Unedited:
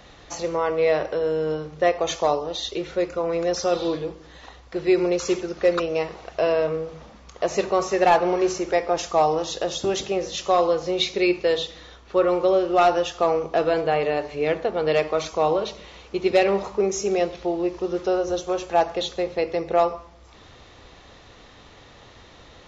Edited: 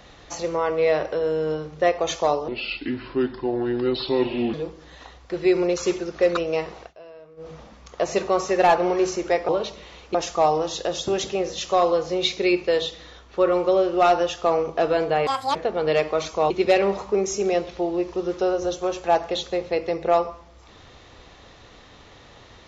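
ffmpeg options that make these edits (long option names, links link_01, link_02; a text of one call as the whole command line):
ffmpeg -i in.wav -filter_complex "[0:a]asplit=10[link_01][link_02][link_03][link_04][link_05][link_06][link_07][link_08][link_09][link_10];[link_01]atrim=end=2.484[link_11];[link_02]atrim=start=2.48:end=3.96,asetpts=PTS-STARTPTS,asetrate=31752,aresample=44100[link_12];[link_03]atrim=start=3.956:end=6.36,asetpts=PTS-STARTPTS,afade=type=out:start_time=2.274:duration=0.13:silence=0.0707946[link_13];[link_04]atrim=start=6.36:end=6.79,asetpts=PTS-STARTPTS,volume=-23dB[link_14];[link_05]atrim=start=6.79:end=8.912,asetpts=PTS-STARTPTS,afade=type=in:duration=0.13:silence=0.0707946[link_15];[link_06]atrim=start=15.498:end=16.162[link_16];[link_07]atrim=start=8.908:end=14.034[link_17];[link_08]atrim=start=14.03:end=14.55,asetpts=PTS-STARTPTS,asetrate=79821,aresample=44100[link_18];[link_09]atrim=start=14.546:end=15.502[link_19];[link_10]atrim=start=16.158[link_20];[link_11][link_12]acrossfade=duration=0.004:curve1=hsin:curve2=hsin[link_21];[link_13][link_14][link_15]concat=n=3:v=0:a=1[link_22];[link_21][link_22]acrossfade=duration=0.004:curve1=hsin:curve2=hsin[link_23];[link_23][link_16]acrossfade=duration=0.004:curve1=hsin:curve2=hsin[link_24];[link_24][link_17]acrossfade=duration=0.004:curve1=hsin:curve2=hsin[link_25];[link_25][link_18]acrossfade=duration=0.004:curve1=hsin:curve2=hsin[link_26];[link_26][link_19]acrossfade=duration=0.004:curve1=hsin:curve2=hsin[link_27];[link_27][link_20]acrossfade=duration=0.004:curve1=hsin:curve2=hsin" out.wav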